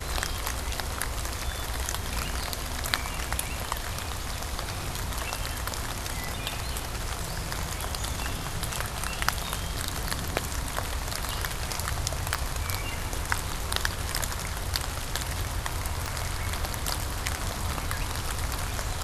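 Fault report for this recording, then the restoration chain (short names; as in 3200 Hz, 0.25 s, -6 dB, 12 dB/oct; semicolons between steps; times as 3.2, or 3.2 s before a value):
12.34 pop
16.06 pop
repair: de-click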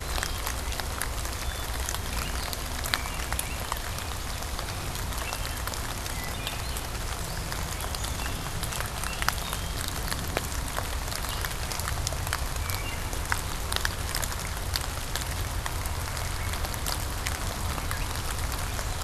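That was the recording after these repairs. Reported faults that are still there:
16.06 pop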